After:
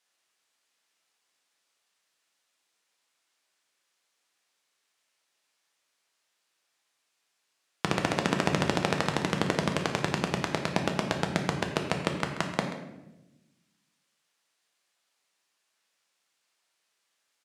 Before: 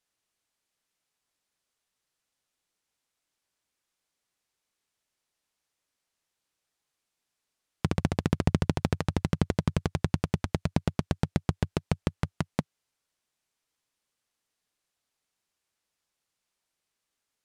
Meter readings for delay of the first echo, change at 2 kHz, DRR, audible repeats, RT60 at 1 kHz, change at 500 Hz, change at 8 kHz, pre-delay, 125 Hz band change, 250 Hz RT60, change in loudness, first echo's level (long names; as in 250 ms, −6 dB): 133 ms, +8.5 dB, 2.5 dB, 1, 0.85 s, +4.5 dB, +6.5 dB, 6 ms, −5.5 dB, 1.5 s, +0.5 dB, −13.5 dB